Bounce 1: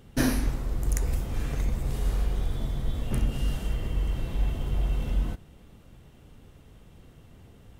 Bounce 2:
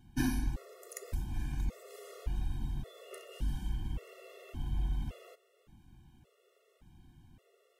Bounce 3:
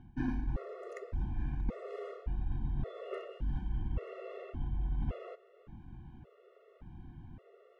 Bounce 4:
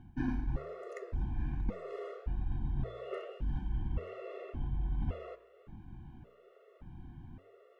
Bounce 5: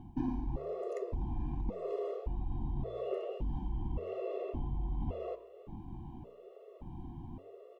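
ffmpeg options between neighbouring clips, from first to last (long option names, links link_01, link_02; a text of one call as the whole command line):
ffmpeg -i in.wav -af "afftfilt=real='re*gt(sin(2*PI*0.88*pts/sr)*(1-2*mod(floor(b*sr/1024/360),2)),0)':imag='im*gt(sin(2*PI*0.88*pts/sr)*(1-2*mod(floor(b*sr/1024/360),2)),0)':win_size=1024:overlap=0.75,volume=-6.5dB" out.wav
ffmpeg -i in.wav -af "lowpass=1600,areverse,acompressor=threshold=-39dB:ratio=12,areverse,volume=9dB" out.wav
ffmpeg -i in.wav -af "flanger=delay=9:depth=8.7:regen=84:speed=1.2:shape=triangular,volume=5dB" out.wav
ffmpeg -i in.wav -af "firequalizer=gain_entry='entry(130,0);entry(340,6);entry(530,4);entry(1000,7);entry(1400,-15);entry(2700,-2)':delay=0.05:min_phase=1,acompressor=threshold=-36dB:ratio=3,volume=3dB" out.wav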